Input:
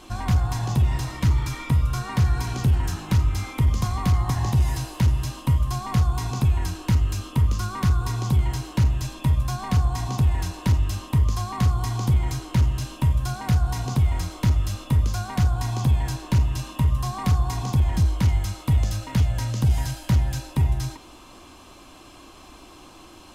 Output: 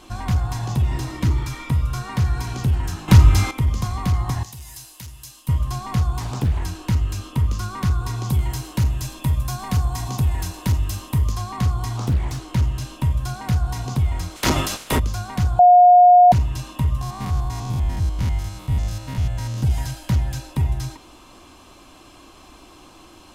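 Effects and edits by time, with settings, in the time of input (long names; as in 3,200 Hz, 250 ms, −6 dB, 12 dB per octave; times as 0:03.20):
0:00.89–0:01.44: parametric band 320 Hz +8 dB
0:03.08–0:03.51: clip gain +10 dB
0:04.43–0:05.49: first-order pre-emphasis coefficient 0.9
0:06.20–0:06.63: highs frequency-modulated by the lows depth 0.89 ms
0:08.29–0:11.32: high-shelf EQ 8,400 Hz +10.5 dB
0:11.97–0:12.48: highs frequency-modulated by the lows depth 0.77 ms
0:14.35–0:14.98: ceiling on every frequency bin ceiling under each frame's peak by 27 dB
0:15.59–0:16.32: beep over 716 Hz −6.5 dBFS
0:17.01–0:19.63: spectrum averaged block by block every 100 ms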